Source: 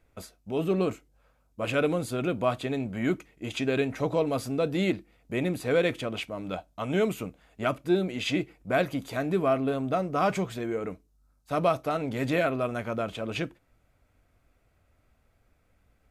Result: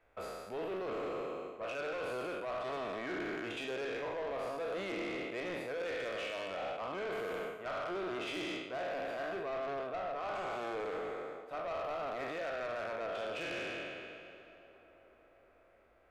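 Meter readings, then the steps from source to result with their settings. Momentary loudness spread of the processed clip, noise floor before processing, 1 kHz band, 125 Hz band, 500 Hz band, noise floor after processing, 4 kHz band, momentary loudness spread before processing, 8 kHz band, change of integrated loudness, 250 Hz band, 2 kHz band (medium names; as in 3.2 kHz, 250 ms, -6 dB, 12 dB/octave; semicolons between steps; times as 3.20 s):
4 LU, -68 dBFS, -7.0 dB, -21.5 dB, -9.0 dB, -65 dBFS, -7.5 dB, 9 LU, -12.0 dB, -10.0 dB, -15.5 dB, -6.0 dB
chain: spectral sustain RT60 1.99 s; three-band isolator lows -23 dB, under 500 Hz, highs -15 dB, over 3.1 kHz; reverse; compression 6:1, threshold -35 dBFS, peak gain reduction 15.5 dB; reverse; bass shelf 470 Hz +9 dB; saturation -34.5 dBFS, distortion -11 dB; tape echo 362 ms, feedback 80%, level -16 dB, low-pass 2.5 kHz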